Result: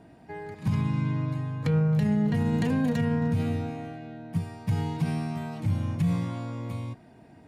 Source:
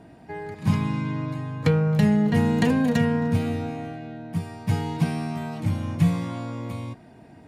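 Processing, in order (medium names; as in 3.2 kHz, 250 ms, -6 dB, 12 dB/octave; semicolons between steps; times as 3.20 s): dynamic bell 120 Hz, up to +8 dB, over -36 dBFS, Q 1.5; peak limiter -13.5 dBFS, peak gain reduction 9.5 dB; trim -4 dB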